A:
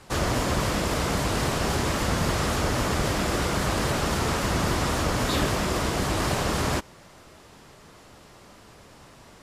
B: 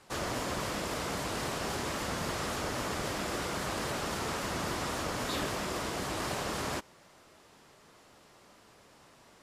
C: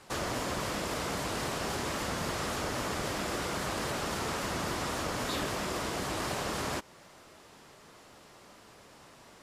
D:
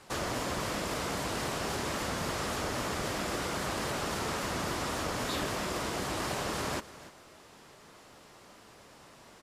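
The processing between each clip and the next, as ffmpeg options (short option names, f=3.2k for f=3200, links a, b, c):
-af "lowshelf=f=140:g=-10.5,volume=-7.5dB"
-af "acompressor=threshold=-40dB:ratio=1.5,volume=4dB"
-af "aecho=1:1:295:0.15"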